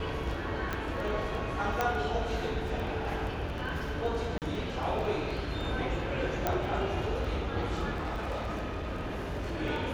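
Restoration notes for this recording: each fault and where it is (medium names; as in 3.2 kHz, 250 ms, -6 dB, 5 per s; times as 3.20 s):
crackle 11 per s -36 dBFS
0.73 s: pop -19 dBFS
1.81 s: pop -14 dBFS
4.38–4.42 s: dropout 38 ms
6.47 s: pop -13 dBFS
7.93–9.61 s: clipped -30.5 dBFS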